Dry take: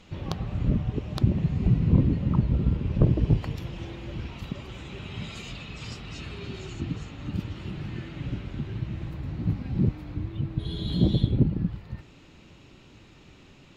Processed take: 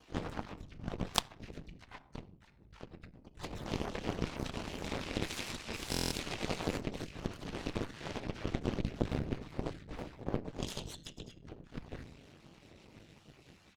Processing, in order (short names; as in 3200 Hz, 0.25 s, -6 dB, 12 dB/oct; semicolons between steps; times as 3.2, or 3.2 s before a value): random spectral dropouts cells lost 35%; expander -58 dBFS; HPF 44 Hz 24 dB/oct; negative-ratio compressor -35 dBFS, ratio -0.5; flange 1.1 Hz, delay 2.5 ms, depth 5 ms, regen -43%; harmoniser -3 st -4 dB, +7 st -5 dB, +12 st -8 dB; on a send at -9.5 dB: reverb RT60 0.55 s, pre-delay 18 ms; on the sum: added harmonics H 3 -12 dB, 4 -26 dB, 7 -26 dB, 8 -29 dB, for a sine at -14.5 dBFS; stuck buffer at 5.91, samples 1024, times 8; gain +9 dB